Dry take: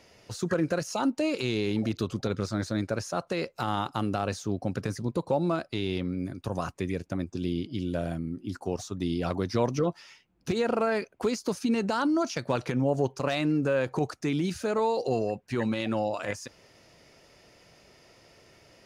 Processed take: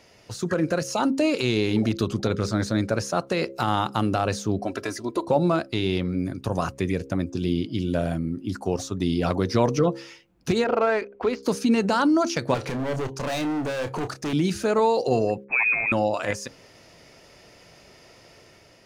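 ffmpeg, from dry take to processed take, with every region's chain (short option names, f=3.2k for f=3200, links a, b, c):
-filter_complex "[0:a]asettb=1/sr,asplit=3[a][b][c];[a]atrim=end=4.594[d];[b]atrim=start=4.59:end=5.28,asetpts=PTS-STARTPTS,afade=t=in:d=0.004:c=qsin,afade=t=out:st=0.686:d=0.004:c=qsin,bass=f=250:g=-14,treble=f=4k:g=-1,aecho=1:1:3:0.71,atrim=end_sample=30429[e];[c]atrim=start=5.276[f];[d][e]acrossfade=d=0.004:c1=hsin:c2=qsin[g];[g][f]acrossfade=d=0.004:c1=qsin:c2=hsin,asettb=1/sr,asplit=3[h][i][j];[h]atrim=end=10.644[k];[i]atrim=start=10.64:end=11.43,asetpts=PTS-STARTPTS,afade=t=in:d=0.004:c=qsin,afade=t=out:st=0.786:d=0.004:c=qsin,lowpass=3.8k,equalizer=f=170:w=1.7:g=-13.5,adynamicsmooth=sensitivity=5:basefreq=3k[l];[j]atrim=start=11.426[m];[k][l]acrossfade=d=0.004:c1=hsin:c2=qsin[n];[n][m]acrossfade=d=0.004:c1=qsin:c2=hsin,asettb=1/sr,asplit=3[o][p][q];[o]atrim=end=12.544[r];[p]atrim=start=12.54:end=14.33,asetpts=PTS-STARTPTS,afade=t=in:d=0.004:c=qsin,afade=t=out:st=1.786:d=0.004:c=qsin,volume=31.5dB,asoftclip=hard,volume=-31.5dB,asplit=2[s][t];[t]adelay=30,volume=-10dB[u];[s][u]amix=inputs=2:normalize=0,atrim=end_sample=78939[v];[q]atrim=start=14.326[w];[r][v]acrossfade=d=0.004:c1=hsin:c2=qsin[x];[x][w]acrossfade=d=0.004:c1=qsin:c2=hsin,asettb=1/sr,asplit=3[y][z][aa];[y]atrim=end=15.444[ab];[z]atrim=start=15.44:end=15.92,asetpts=PTS-STARTPTS,afade=t=in:d=0.004:c=qsin,afade=t=out:st=0.476:d=0.004:c=qsin,aeval=exprs='val(0)*gte(abs(val(0)),0.00668)':c=same,lowpass=f=2.3k:t=q:w=0.5098,lowpass=f=2.3k:t=q:w=0.6013,lowpass=f=2.3k:t=q:w=0.9,lowpass=f=2.3k:t=q:w=2.563,afreqshift=-2700[ac];[aa]atrim=start=15.916[ad];[ab][ac]acrossfade=d=0.004:c1=hsin:c2=qsin[ae];[ae][ad]acrossfade=d=0.004:c1=qsin:c2=hsin,bandreject=f=67.49:t=h:w=4,bandreject=f=134.98:t=h:w=4,bandreject=f=202.47:t=h:w=4,bandreject=f=269.96:t=h:w=4,bandreject=f=337.45:t=h:w=4,bandreject=f=404.94:t=h:w=4,bandreject=f=472.43:t=h:w=4,bandreject=f=539.92:t=h:w=4,dynaudnorm=f=540:g=3:m=3.5dB,volume=2.5dB"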